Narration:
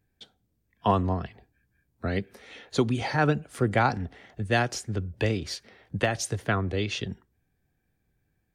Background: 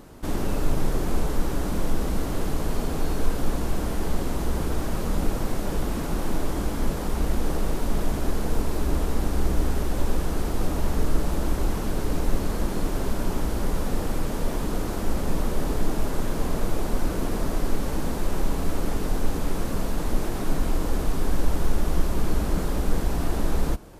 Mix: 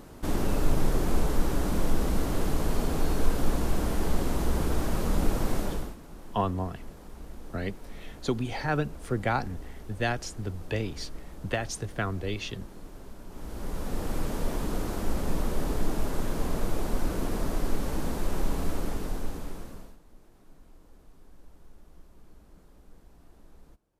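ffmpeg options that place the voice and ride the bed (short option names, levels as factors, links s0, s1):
-filter_complex "[0:a]adelay=5500,volume=0.596[s0];[1:a]volume=5.31,afade=t=out:st=5.58:d=0.38:silence=0.125893,afade=t=in:st=13.29:d=0.92:silence=0.16788,afade=t=out:st=18.62:d=1.37:silence=0.0446684[s1];[s0][s1]amix=inputs=2:normalize=0"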